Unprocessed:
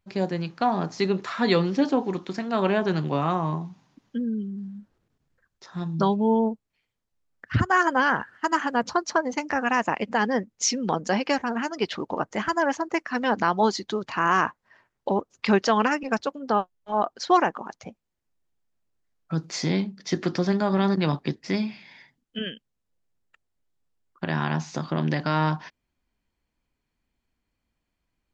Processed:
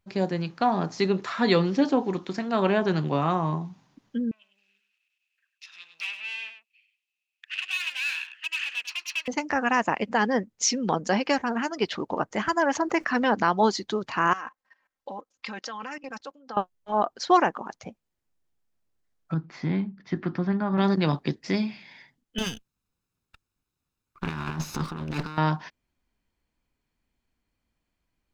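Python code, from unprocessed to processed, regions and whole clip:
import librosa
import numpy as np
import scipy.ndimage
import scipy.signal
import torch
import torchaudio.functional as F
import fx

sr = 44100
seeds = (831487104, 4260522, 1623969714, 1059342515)

y = fx.chain(x, sr, fx.tube_stage(drive_db=31.0, bias=0.6),
    fx.highpass_res(hz=2600.0, q=16.0),
    fx.echo_single(ms=102, db=-10.0), at=(4.31, 9.28))
y = fx.chain(y, sr, fx.high_shelf(hz=5700.0, db=-5.5),
    fx.env_flatten(amount_pct=50), at=(12.75, 13.35))
y = fx.chain(y, sr, fx.low_shelf(hz=420.0, db=-11.5),
    fx.comb(ms=3.8, depth=0.59),
    fx.level_steps(step_db=18), at=(14.33, 16.57))
y = fx.chain(y, sr, fx.lowpass(hz=1700.0, slope=12),
    fx.peak_eq(hz=510.0, db=-9.0, octaves=1.2), at=(19.34, 20.78))
y = fx.chain(y, sr, fx.lower_of_two(delay_ms=0.77),
    fx.over_compress(threshold_db=-29.0, ratio=-0.5), at=(22.38, 25.38))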